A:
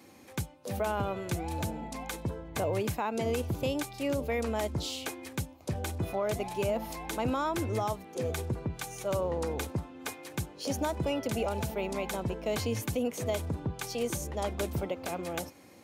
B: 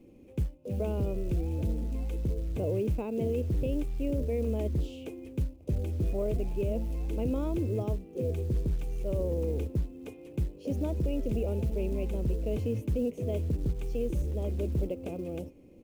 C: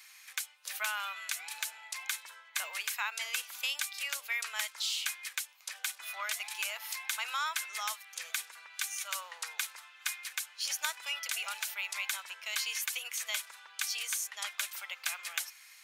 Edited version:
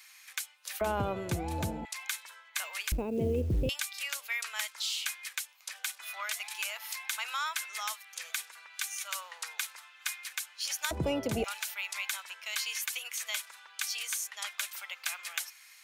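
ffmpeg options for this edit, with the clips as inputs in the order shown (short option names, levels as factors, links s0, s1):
-filter_complex "[0:a]asplit=2[s0][s1];[2:a]asplit=4[s2][s3][s4][s5];[s2]atrim=end=0.812[s6];[s0]atrim=start=0.808:end=1.852[s7];[s3]atrim=start=1.848:end=2.922[s8];[1:a]atrim=start=2.918:end=3.692[s9];[s4]atrim=start=3.688:end=10.912[s10];[s1]atrim=start=10.908:end=11.442[s11];[s5]atrim=start=11.438[s12];[s6][s7]acrossfade=d=0.004:c1=hsin:c2=hsin[s13];[s13][s8]acrossfade=d=0.004:c1=hsin:c2=hsin[s14];[s14][s9]acrossfade=d=0.004:c1=hsin:c2=hsin[s15];[s15][s10]acrossfade=d=0.004:c1=hsin:c2=hsin[s16];[s16][s11]acrossfade=d=0.004:c1=hsin:c2=hsin[s17];[s17][s12]acrossfade=d=0.004:c1=hsin:c2=hsin"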